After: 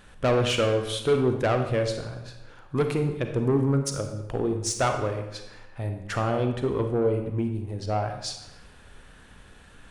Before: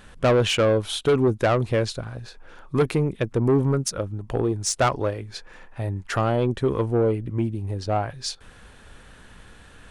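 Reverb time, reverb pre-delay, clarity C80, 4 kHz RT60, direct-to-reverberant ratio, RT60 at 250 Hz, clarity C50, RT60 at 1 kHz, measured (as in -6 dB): 0.95 s, 33 ms, 8.5 dB, 0.75 s, 5.5 dB, 1.1 s, 6.5 dB, 0.95 s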